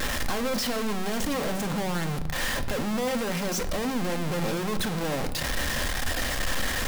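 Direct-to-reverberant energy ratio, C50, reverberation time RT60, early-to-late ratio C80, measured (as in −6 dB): 7.5 dB, 13.5 dB, 1.0 s, 15.5 dB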